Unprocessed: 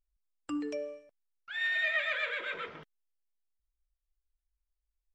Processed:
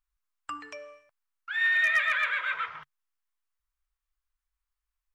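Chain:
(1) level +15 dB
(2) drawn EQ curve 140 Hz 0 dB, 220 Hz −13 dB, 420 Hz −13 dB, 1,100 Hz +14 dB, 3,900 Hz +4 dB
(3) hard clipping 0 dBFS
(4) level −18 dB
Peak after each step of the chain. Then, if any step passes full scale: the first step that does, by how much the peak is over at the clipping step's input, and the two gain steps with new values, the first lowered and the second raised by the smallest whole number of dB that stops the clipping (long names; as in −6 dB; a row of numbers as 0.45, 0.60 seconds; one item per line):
−6.5, +4.0, 0.0, −18.0 dBFS
step 2, 4.0 dB
step 1 +11 dB, step 4 −14 dB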